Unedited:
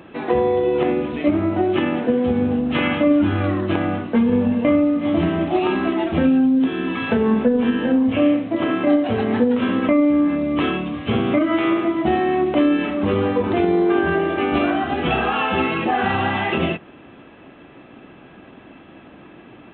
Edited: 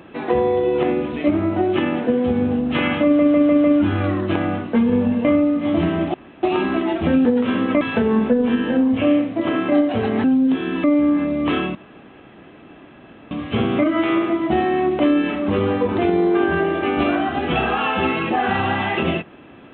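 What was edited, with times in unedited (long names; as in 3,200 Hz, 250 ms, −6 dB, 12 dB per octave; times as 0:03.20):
0:03.04: stutter 0.15 s, 5 plays
0:05.54: splice in room tone 0.29 s
0:06.36–0:06.96: swap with 0:09.39–0:09.95
0:10.86: splice in room tone 1.56 s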